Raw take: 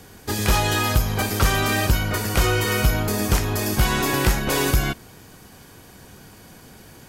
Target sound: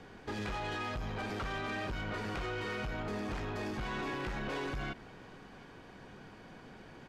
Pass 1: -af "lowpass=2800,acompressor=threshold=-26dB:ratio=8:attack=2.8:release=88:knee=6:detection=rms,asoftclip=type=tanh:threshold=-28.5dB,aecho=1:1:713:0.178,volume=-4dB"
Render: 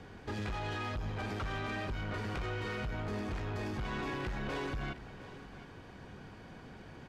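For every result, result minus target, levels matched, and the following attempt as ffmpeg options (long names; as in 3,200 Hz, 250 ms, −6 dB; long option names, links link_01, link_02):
echo-to-direct +8 dB; 125 Hz band +3.5 dB
-af "lowpass=2800,acompressor=threshold=-26dB:ratio=8:attack=2.8:release=88:knee=6:detection=rms,asoftclip=type=tanh:threshold=-28.5dB,aecho=1:1:713:0.0708,volume=-4dB"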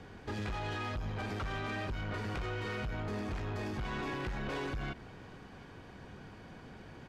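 125 Hz band +3.5 dB
-af "lowpass=2800,equalizer=frequency=75:width=0.82:gain=-8,acompressor=threshold=-26dB:ratio=8:attack=2.8:release=88:knee=6:detection=rms,asoftclip=type=tanh:threshold=-28.5dB,aecho=1:1:713:0.0708,volume=-4dB"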